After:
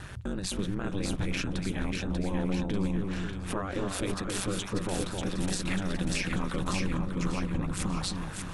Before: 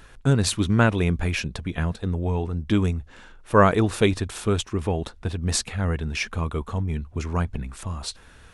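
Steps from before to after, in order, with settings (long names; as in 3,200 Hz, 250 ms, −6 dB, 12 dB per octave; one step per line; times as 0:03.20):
downward compressor, threshold −29 dBFS, peak gain reduction 17.5 dB
brickwall limiter −29 dBFS, peak gain reduction 10.5 dB
ring modulation 96 Hz
echo with a time of its own for lows and highs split 1,200 Hz, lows 262 ms, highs 591 ms, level −4 dB
0:05.38–0:06.82: multiband upward and downward compressor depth 70%
level +8 dB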